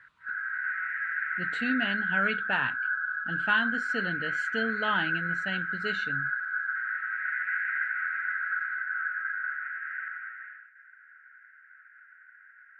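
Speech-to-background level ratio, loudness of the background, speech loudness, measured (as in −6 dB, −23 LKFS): −1.0 dB, −30.5 LKFS, −31.5 LKFS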